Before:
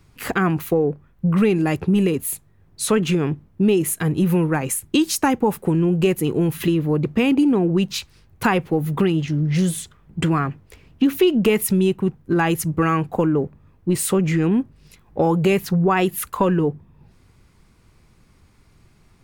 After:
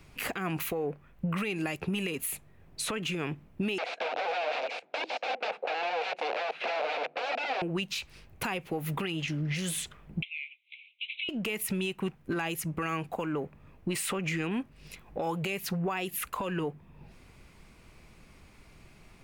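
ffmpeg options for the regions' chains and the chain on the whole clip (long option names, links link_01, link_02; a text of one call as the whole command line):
ffmpeg -i in.wav -filter_complex "[0:a]asettb=1/sr,asplit=3[link_01][link_02][link_03];[link_01]atrim=end=3.784[link_04];[link_02]atrim=start=3.78:end=7.62,asetpts=PTS-STARTPTS,afade=type=in:duration=0.004:curve=qsin,afade=type=out:start_time=3.836:duration=0.004:curve=qsin,aeval=exprs='(mod(11.9*val(0)+1,2)-1)/11.9':channel_layout=same,highpass=frequency=320:width=0.5412,highpass=frequency=320:width=1.3066,equalizer=frequency=340:width_type=q:width=4:gain=-7,equalizer=frequency=500:width_type=q:width=4:gain=8,equalizer=frequency=730:width_type=q:width=4:gain=10,equalizer=frequency=1100:width_type=q:width=4:gain=-5,equalizer=frequency=1900:width_type=q:width=4:gain=-7,equalizer=frequency=3100:width_type=q:width=4:gain=-7,lowpass=frequency=3500:width=0.5412,lowpass=frequency=3500:width=1.3066[link_05];[link_03]atrim=start=7.616[link_06];[link_04][link_05]acrossfade=duration=0.004:curve1=hsin:curve2=qsin[link_07];[link_07][link_06]acrossfade=duration=0.004:curve1=qsin:curve2=hsin,asettb=1/sr,asplit=3[link_08][link_09][link_10];[link_08]atrim=end=10.224[link_11];[link_09]atrim=start=10.22:end=11.29,asetpts=PTS-STARTPTS,afade=type=in:duration=0.004:curve=qsin,afade=type=out:start_time=1.066:duration=0.004:curve=qsin,asuperpass=centerf=2900:order=20:qfactor=1.6,acompressor=threshold=-38dB:ratio=5:attack=3.2:release=140:knee=1:detection=peak[link_12];[link_10]atrim=start=11.286[link_13];[link_11][link_12]acrossfade=duration=0.004:curve1=hsin:curve2=qsin[link_14];[link_14][link_13]acrossfade=duration=0.004:curve1=qsin:curve2=hsin,equalizer=frequency=100:width_type=o:width=0.67:gain=-6,equalizer=frequency=630:width_type=o:width=0.67:gain=5,equalizer=frequency=2500:width_type=o:width=0.67:gain=7,acrossover=split=940|3300[link_15][link_16][link_17];[link_15]acompressor=threshold=-30dB:ratio=4[link_18];[link_16]acompressor=threshold=-31dB:ratio=4[link_19];[link_17]acompressor=threshold=-32dB:ratio=4[link_20];[link_18][link_19][link_20]amix=inputs=3:normalize=0,alimiter=limit=-22.5dB:level=0:latency=1:release=194" out.wav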